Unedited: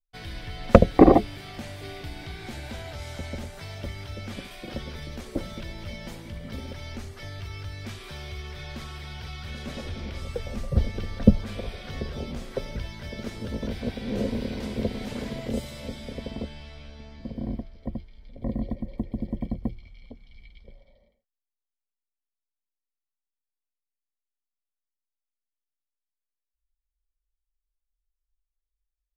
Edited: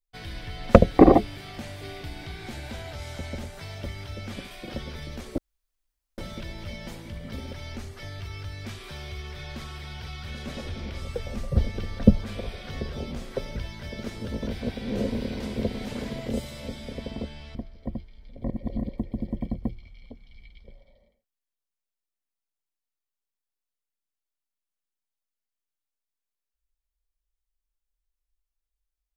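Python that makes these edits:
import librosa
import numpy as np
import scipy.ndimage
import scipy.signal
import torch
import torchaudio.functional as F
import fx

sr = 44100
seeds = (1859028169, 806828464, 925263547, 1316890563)

y = fx.edit(x, sr, fx.insert_room_tone(at_s=5.38, length_s=0.8),
    fx.cut(start_s=16.75, length_s=0.8),
    fx.reverse_span(start_s=18.5, length_s=0.39), tone=tone)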